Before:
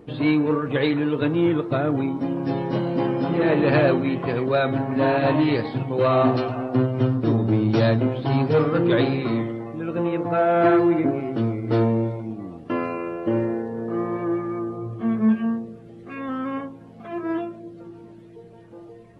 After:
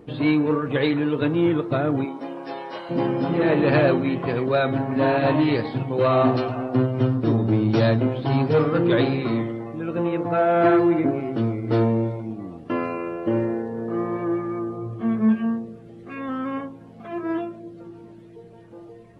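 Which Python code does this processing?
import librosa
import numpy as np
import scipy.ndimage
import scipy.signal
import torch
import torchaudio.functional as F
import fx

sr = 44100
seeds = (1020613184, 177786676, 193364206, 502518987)

y = fx.highpass(x, sr, hz=fx.line((2.04, 360.0), (2.89, 860.0)), slope=12, at=(2.04, 2.89), fade=0.02)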